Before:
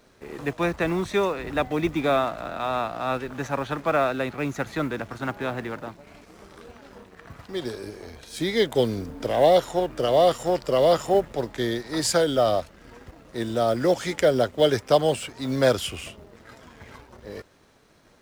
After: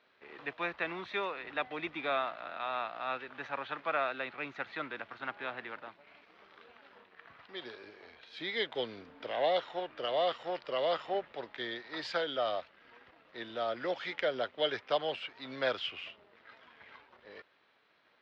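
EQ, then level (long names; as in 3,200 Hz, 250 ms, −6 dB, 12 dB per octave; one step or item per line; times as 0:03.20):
resonant band-pass 3,800 Hz, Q 1.2
high-frequency loss of the air 320 metres
high-shelf EQ 3,900 Hz −11.5 dB
+6.5 dB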